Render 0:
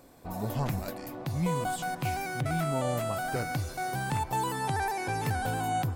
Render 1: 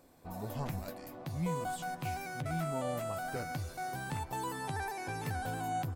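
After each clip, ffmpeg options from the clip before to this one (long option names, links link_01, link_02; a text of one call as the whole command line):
ffmpeg -i in.wav -filter_complex "[0:a]asplit=2[link_01][link_02];[link_02]adelay=12,volume=-11dB[link_03];[link_01][link_03]amix=inputs=2:normalize=0,volume=-7dB" out.wav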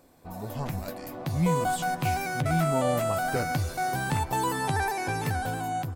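ffmpeg -i in.wav -af "dynaudnorm=framelen=220:gausssize=9:maxgain=7dB,volume=3.5dB" out.wav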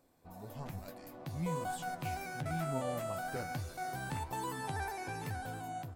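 ffmpeg -i in.wav -af "flanger=delay=6.9:depth=9.6:regen=77:speed=1.1:shape=triangular,volume=-7dB" out.wav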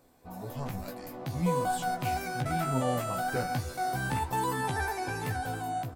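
ffmpeg -i in.wav -filter_complex "[0:a]asplit=2[link_01][link_02];[link_02]adelay=16,volume=-5dB[link_03];[link_01][link_03]amix=inputs=2:normalize=0,volume=6.5dB" out.wav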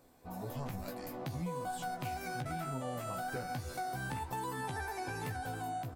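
ffmpeg -i in.wav -af "acompressor=threshold=-35dB:ratio=6,volume=-1dB" out.wav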